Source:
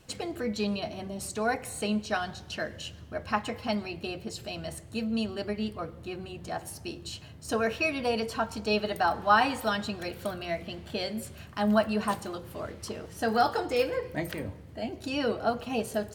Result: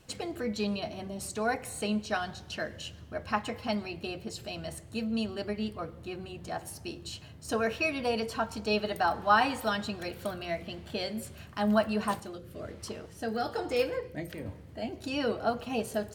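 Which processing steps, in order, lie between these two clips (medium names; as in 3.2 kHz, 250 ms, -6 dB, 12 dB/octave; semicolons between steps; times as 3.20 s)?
12.20–14.46 s: rotary cabinet horn 1.1 Hz; trim -1.5 dB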